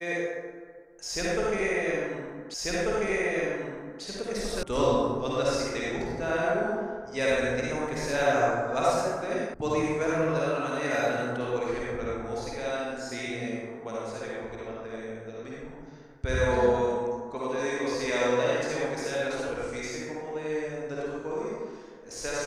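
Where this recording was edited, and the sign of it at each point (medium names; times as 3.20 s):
2.54 s: repeat of the last 1.49 s
4.63 s: sound stops dead
9.54 s: sound stops dead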